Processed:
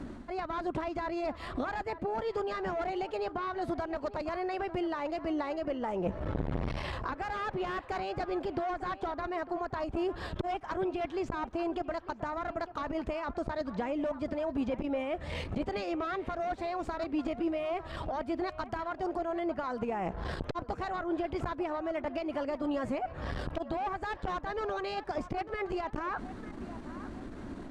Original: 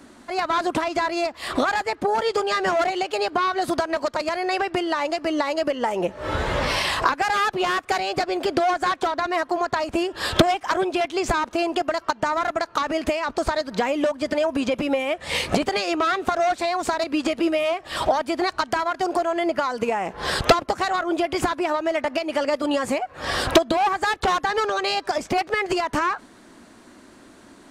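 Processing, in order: reverse; compression 6:1, threshold -35 dBFS, peak gain reduction 22 dB; reverse; RIAA curve playback; band-passed feedback delay 900 ms, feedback 42%, band-pass 980 Hz, level -13 dB; transformer saturation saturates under 440 Hz; trim +1 dB

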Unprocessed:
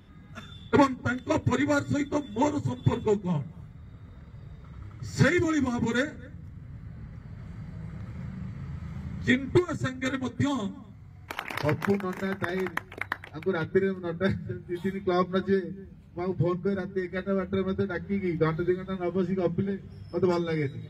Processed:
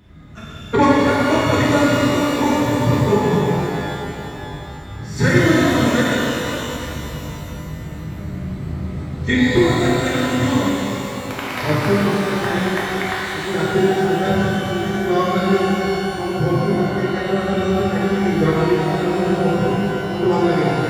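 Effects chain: pitch-shifted reverb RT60 3.2 s, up +12 st, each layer -8 dB, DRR -7 dB; trim +2 dB

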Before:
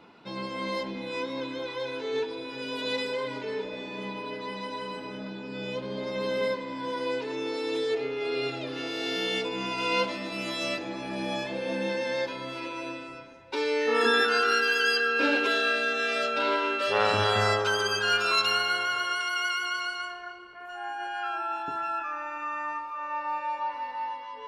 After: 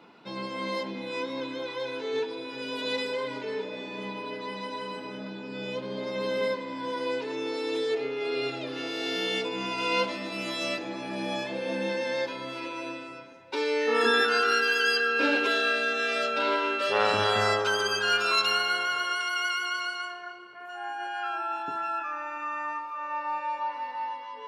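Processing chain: high-pass 130 Hz 12 dB/octave

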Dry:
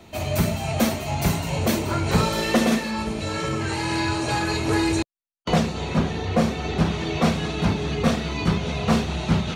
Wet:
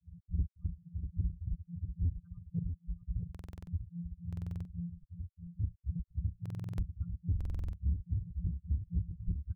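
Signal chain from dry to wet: sorted samples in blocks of 256 samples; reverb removal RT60 0.72 s; spectral gate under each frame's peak -10 dB strong; inverse Chebyshev band-stop 310–890 Hz, stop band 70 dB; peak limiter -32 dBFS, peak gain reduction 11.5 dB; granulator 210 ms, grains 3.6 per s, spray 10 ms, pitch spread up and down by 0 st; saturation -34 dBFS, distortion -20 dB; delay 643 ms -8 dB; buffer glitch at 3.30/4.28/6.41/7.36 s, samples 2048, times 7; trim +11 dB

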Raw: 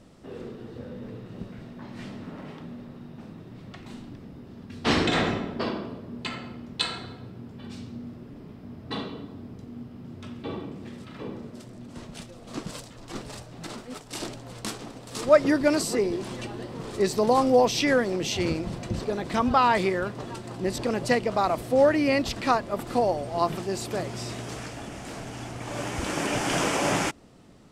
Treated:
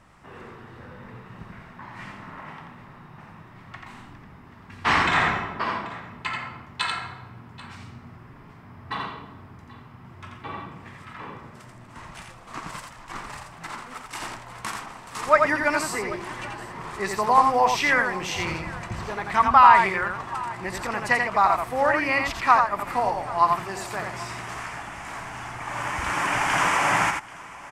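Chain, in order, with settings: ten-band graphic EQ 250 Hz -7 dB, 500 Hz -8 dB, 1 kHz +11 dB, 2 kHz +8 dB, 4 kHz -5 dB; on a send: multi-tap echo 86/785 ms -4.5/-19 dB; on the sum: trim -1.5 dB

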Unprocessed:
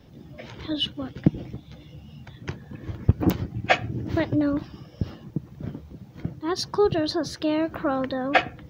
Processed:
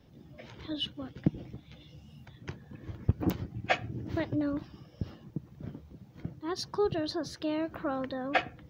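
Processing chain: 1.57–2.25 s: peaking EQ 1.6 kHz -> 13 kHz +8.5 dB 0.86 oct; trim -8 dB

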